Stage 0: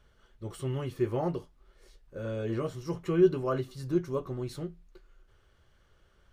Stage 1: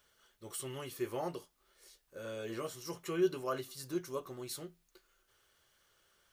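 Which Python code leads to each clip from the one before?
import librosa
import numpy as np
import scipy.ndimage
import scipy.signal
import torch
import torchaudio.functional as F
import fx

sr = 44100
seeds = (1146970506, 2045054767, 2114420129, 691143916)

y = fx.riaa(x, sr, side='recording')
y = F.gain(torch.from_numpy(y), -4.0).numpy()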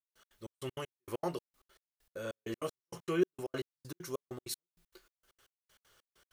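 y = fx.step_gate(x, sr, bpm=195, pattern='..x.xx..x.x.', floor_db=-60.0, edge_ms=4.5)
y = F.gain(torch.from_numpy(y), 4.0).numpy()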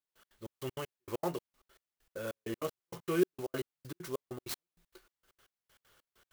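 y = fx.clock_jitter(x, sr, seeds[0], jitter_ms=0.035)
y = F.gain(torch.from_numpy(y), 1.0).numpy()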